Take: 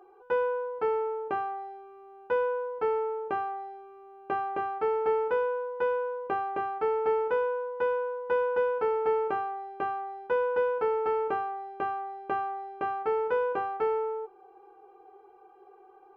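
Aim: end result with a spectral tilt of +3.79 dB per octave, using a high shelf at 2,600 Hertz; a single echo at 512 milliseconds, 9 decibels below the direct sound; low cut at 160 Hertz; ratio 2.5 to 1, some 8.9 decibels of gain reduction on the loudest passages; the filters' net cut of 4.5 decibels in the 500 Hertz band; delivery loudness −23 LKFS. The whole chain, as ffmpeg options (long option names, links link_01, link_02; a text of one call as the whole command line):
ffmpeg -i in.wav -af "highpass=160,equalizer=frequency=500:width_type=o:gain=-5,highshelf=frequency=2600:gain=5.5,acompressor=threshold=-40dB:ratio=2.5,aecho=1:1:512:0.355,volume=16.5dB" out.wav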